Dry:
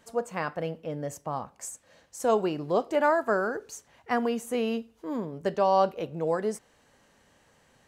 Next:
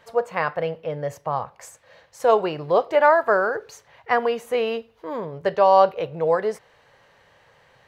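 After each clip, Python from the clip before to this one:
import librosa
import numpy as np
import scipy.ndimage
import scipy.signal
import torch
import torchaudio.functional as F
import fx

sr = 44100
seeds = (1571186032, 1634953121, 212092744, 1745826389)

y = fx.graphic_eq(x, sr, hz=(125, 250, 500, 1000, 2000, 4000, 8000), db=(8, -9, 8, 6, 7, 6, -8))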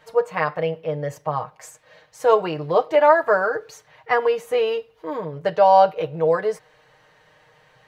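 y = x + 0.72 * np.pad(x, (int(6.5 * sr / 1000.0), 0))[:len(x)]
y = y * 10.0 ** (-1.0 / 20.0)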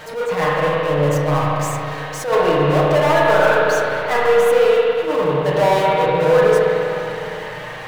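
y = fx.power_curve(x, sr, exponent=0.5)
y = fx.rev_spring(y, sr, rt60_s=3.2, pass_ms=(34, 50), chirp_ms=40, drr_db=-5.0)
y = fx.attack_slew(y, sr, db_per_s=120.0)
y = y * 10.0 ** (-8.0 / 20.0)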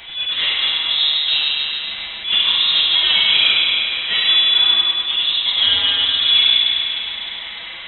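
y = fx.freq_invert(x, sr, carrier_hz=3900)
y = y * 10.0 ** (-1.0 / 20.0)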